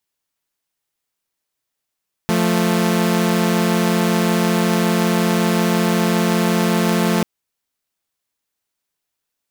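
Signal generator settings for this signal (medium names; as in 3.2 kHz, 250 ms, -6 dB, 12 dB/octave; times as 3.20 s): chord F3/A3 saw, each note -15 dBFS 4.94 s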